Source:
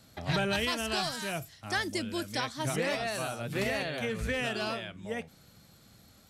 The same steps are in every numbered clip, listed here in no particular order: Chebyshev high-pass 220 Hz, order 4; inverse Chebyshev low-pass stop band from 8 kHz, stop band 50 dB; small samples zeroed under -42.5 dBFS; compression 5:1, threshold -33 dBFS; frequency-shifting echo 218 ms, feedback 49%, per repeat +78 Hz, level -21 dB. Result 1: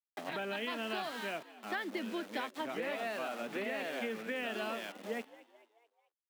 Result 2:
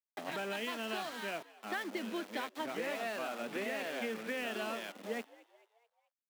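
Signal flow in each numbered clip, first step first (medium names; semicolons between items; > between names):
inverse Chebyshev low-pass > small samples zeroed > frequency-shifting echo > compression > Chebyshev high-pass; compression > inverse Chebyshev low-pass > small samples zeroed > Chebyshev high-pass > frequency-shifting echo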